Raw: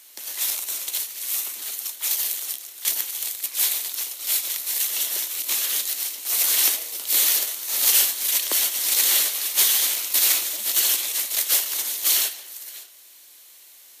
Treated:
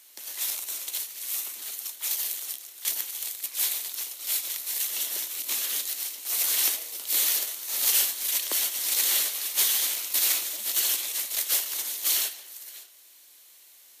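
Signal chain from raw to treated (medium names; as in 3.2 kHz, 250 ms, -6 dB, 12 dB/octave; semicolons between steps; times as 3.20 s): 4.92–5.88 s: bass shelf 150 Hz +10 dB; trim -5 dB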